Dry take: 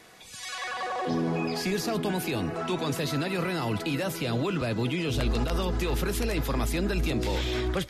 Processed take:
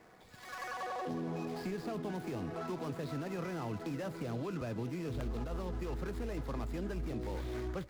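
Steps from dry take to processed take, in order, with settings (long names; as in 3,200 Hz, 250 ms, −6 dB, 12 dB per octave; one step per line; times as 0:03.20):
running median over 15 samples
downward compressor 2.5 to 1, threshold −34 dBFS, peak gain reduction 8 dB
level −4 dB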